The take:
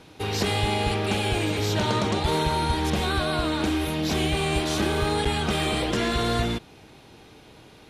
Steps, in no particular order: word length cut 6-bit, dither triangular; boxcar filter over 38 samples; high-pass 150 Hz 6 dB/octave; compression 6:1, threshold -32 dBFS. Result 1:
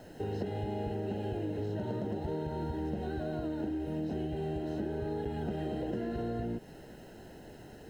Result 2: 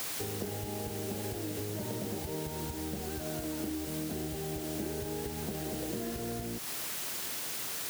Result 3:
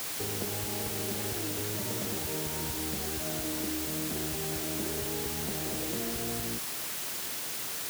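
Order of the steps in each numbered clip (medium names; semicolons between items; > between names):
high-pass > word length cut > boxcar filter > compression; boxcar filter > word length cut > compression > high-pass; boxcar filter > compression > word length cut > high-pass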